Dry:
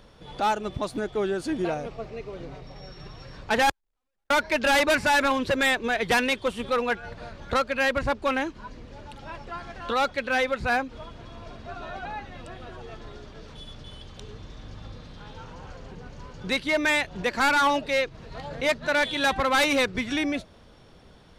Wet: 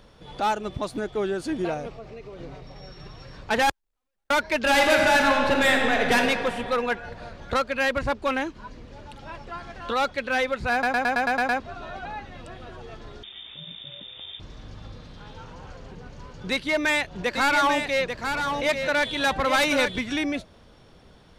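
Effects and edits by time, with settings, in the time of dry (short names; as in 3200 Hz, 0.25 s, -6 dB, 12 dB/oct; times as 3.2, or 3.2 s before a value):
1.9–2.39 compressor 3:1, threshold -37 dBFS
4.62–6.16 reverb throw, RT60 2.5 s, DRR 0.5 dB
10.72 stutter in place 0.11 s, 8 plays
13.23–14.4 inverted band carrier 3600 Hz
16.51–19.99 echo 0.841 s -6 dB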